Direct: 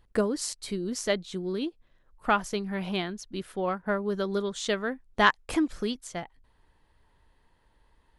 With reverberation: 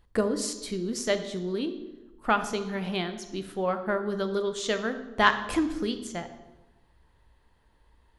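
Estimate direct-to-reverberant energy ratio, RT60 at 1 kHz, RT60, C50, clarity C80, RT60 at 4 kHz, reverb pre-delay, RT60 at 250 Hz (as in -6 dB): 8.5 dB, 1.0 s, 1.1 s, 10.5 dB, 12.5 dB, 0.75 s, 18 ms, 1.2 s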